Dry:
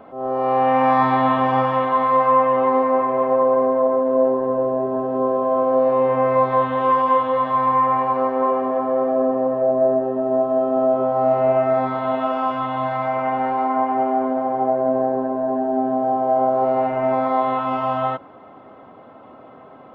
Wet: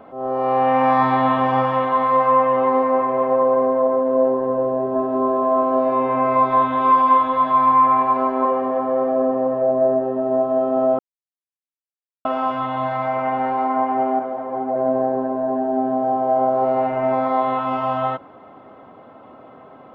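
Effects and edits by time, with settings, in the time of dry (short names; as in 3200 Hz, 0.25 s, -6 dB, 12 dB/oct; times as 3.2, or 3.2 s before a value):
4.95–8.45 comb 3 ms
10.99–12.25 mute
14.19–14.76 ensemble effect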